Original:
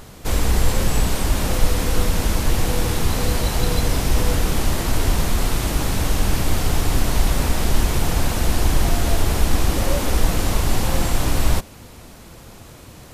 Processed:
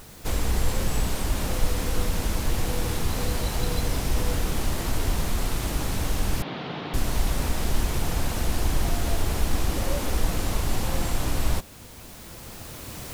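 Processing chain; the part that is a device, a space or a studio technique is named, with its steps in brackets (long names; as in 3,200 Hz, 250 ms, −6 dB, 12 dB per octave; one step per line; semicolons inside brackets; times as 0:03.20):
cheap recorder with automatic gain (white noise bed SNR 28 dB; camcorder AGC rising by 6.2 dB per second)
0:06.42–0:06.94: elliptic band-pass filter 150–3,700 Hz, stop band 40 dB
level −6.5 dB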